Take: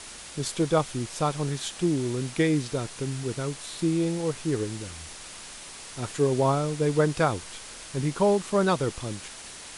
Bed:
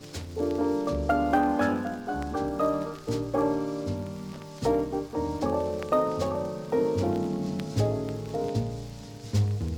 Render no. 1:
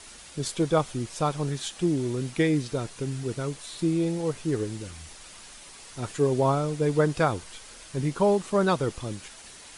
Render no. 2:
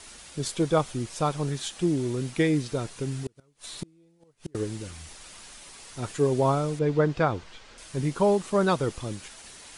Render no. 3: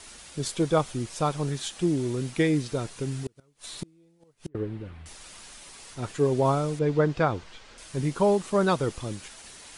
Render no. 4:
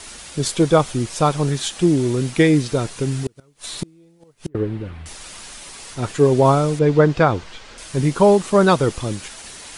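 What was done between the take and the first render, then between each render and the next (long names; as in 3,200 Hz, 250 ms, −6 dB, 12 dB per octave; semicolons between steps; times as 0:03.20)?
broadband denoise 6 dB, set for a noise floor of −43 dBFS
0:03.24–0:04.55: gate with flip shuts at −22 dBFS, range −34 dB; 0:06.79–0:07.78: high-frequency loss of the air 140 metres
0:04.48–0:05.06: high-frequency loss of the air 500 metres; 0:05.93–0:06.44: high-shelf EQ 5,200 Hz → 7,700 Hz −6 dB
level +9 dB; brickwall limiter −3 dBFS, peak gain reduction 1.5 dB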